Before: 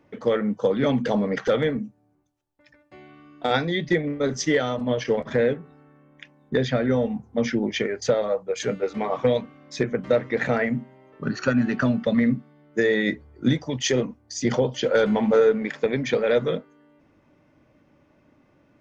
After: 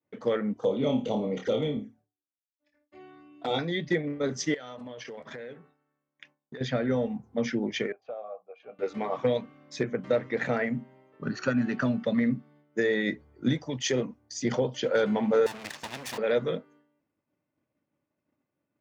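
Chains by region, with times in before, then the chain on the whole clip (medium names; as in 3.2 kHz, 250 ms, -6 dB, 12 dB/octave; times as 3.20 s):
0.53–3.59 s: flutter echo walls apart 4.6 m, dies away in 0.29 s + touch-sensitive flanger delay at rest 3.8 ms, full sweep at -22 dBFS
4.54–6.61 s: bass shelf 480 Hz -9 dB + compression 10:1, threshold -32 dBFS
7.92–8.79 s: vowel filter a + distance through air 260 m
15.46–16.18 s: comb filter that takes the minimum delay 1.1 ms + bass shelf 160 Hz -9 dB + spectrum-flattening compressor 2:1
whole clip: high-pass 89 Hz; expander -48 dBFS; trim -5 dB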